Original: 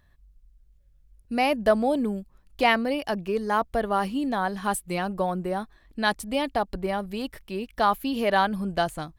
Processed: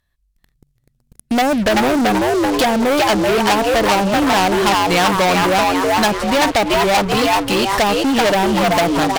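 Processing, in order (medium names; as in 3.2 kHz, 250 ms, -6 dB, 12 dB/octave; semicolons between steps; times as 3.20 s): dynamic bell 930 Hz, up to +6 dB, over -36 dBFS, Q 0.96; low-pass that closes with the level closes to 400 Hz, closed at -15 dBFS; frequency-shifting echo 384 ms, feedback 35%, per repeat +95 Hz, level -3.5 dB; waveshaping leveller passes 5; compression 2:1, threshold -17 dBFS, peak gain reduction 3.5 dB; treble shelf 2.2 kHz +11 dB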